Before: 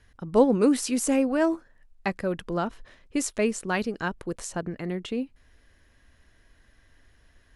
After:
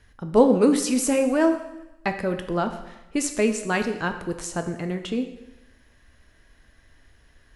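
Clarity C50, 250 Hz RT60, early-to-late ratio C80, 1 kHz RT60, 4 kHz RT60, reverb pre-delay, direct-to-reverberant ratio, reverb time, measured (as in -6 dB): 9.5 dB, 1.0 s, 11.5 dB, 1.0 s, 0.95 s, 7 ms, 6.5 dB, 1.0 s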